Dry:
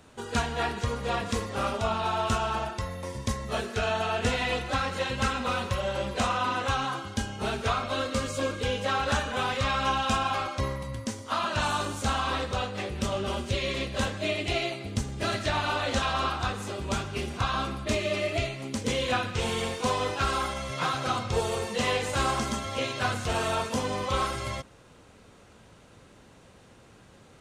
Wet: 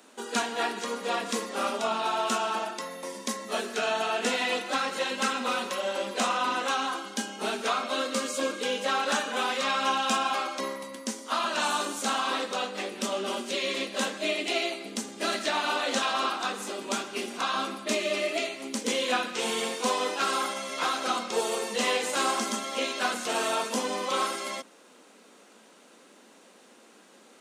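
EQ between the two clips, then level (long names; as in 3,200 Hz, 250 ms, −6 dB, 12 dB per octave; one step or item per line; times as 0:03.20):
Butterworth high-pass 210 Hz 48 dB per octave
high-shelf EQ 5,000 Hz +6.5 dB
0.0 dB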